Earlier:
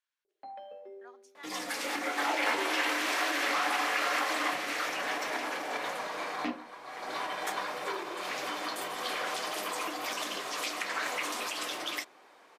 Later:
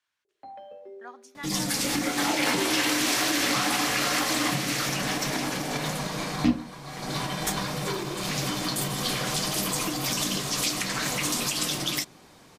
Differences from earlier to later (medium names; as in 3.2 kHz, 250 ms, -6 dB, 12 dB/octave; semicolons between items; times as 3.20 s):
speech +9.5 dB; second sound: remove three-band isolator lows -22 dB, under 310 Hz, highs -13 dB, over 2.7 kHz; master: add peaking EQ 94 Hz +13 dB 2.9 oct